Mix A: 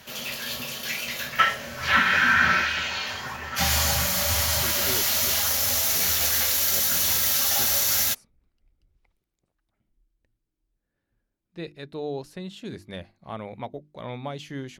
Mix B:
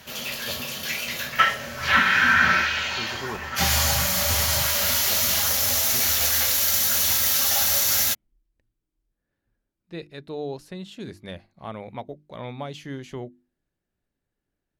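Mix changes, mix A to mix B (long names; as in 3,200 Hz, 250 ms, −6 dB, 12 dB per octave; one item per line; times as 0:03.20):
speech: entry −1.65 s
reverb: on, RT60 1.2 s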